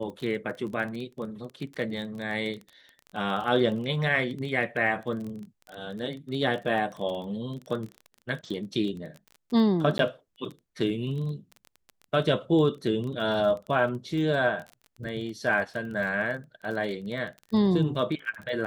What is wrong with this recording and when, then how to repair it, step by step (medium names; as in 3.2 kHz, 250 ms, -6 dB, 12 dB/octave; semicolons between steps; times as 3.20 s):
crackle 22 per s -34 dBFS
9.98–9.99 s: dropout 12 ms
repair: de-click; interpolate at 9.98 s, 12 ms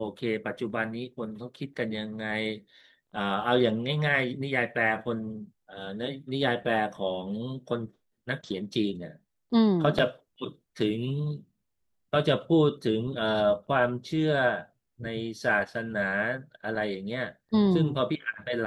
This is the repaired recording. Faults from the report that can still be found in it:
nothing left